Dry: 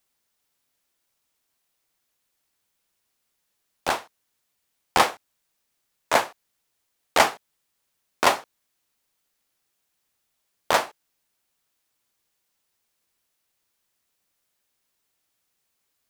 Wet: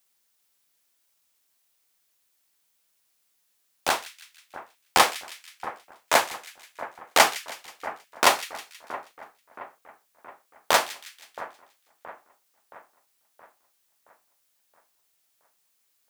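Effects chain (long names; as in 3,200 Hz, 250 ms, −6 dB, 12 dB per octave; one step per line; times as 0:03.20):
spectral tilt +1.5 dB per octave
echo with a time of its own for lows and highs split 1,900 Hz, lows 672 ms, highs 160 ms, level −15 dB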